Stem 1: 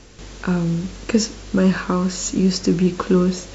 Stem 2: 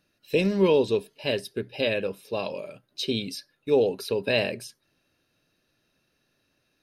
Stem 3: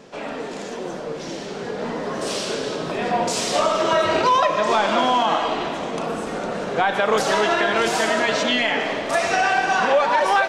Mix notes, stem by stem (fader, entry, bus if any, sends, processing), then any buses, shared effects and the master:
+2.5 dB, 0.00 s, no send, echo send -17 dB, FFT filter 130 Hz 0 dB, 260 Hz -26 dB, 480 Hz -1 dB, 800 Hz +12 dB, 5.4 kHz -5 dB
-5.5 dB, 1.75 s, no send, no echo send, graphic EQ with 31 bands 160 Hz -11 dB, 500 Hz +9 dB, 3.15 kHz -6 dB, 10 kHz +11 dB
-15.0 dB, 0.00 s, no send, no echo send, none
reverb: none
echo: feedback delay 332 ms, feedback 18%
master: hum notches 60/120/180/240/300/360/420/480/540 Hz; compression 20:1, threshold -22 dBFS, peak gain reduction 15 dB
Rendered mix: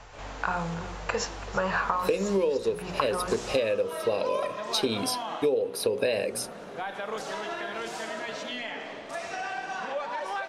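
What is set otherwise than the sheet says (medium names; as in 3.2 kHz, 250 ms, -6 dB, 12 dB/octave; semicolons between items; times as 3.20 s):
stem 1 +2.5 dB -> -4.0 dB; stem 2 -5.5 dB -> +6.0 dB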